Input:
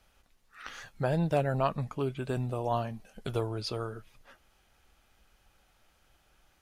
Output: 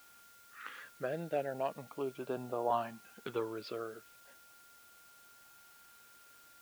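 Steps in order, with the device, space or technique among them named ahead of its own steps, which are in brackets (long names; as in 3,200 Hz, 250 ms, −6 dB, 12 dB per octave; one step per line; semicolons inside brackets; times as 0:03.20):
shortwave radio (band-pass filter 340–2,500 Hz; amplitude tremolo 0.33 Hz, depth 46%; auto-filter notch saw up 0.37 Hz 440–2,500 Hz; steady tone 1,400 Hz −62 dBFS; white noise bed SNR 21 dB)
level +1 dB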